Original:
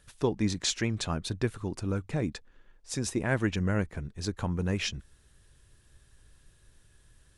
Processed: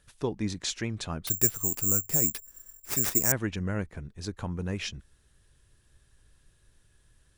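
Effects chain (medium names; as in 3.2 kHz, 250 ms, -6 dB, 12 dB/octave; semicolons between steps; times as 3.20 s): 1.27–3.32 s: careless resampling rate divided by 6×, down none, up zero stuff; trim -3 dB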